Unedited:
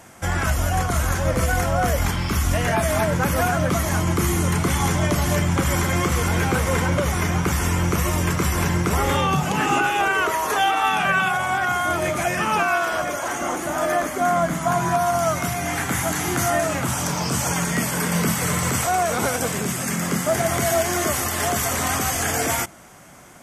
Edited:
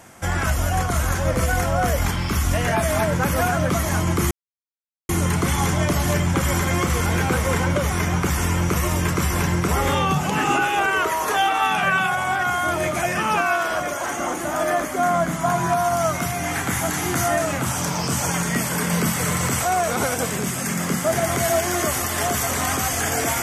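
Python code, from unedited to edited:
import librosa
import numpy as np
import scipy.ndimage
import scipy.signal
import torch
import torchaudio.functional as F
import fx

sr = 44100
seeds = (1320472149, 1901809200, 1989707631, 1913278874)

y = fx.edit(x, sr, fx.insert_silence(at_s=4.31, length_s=0.78), tone=tone)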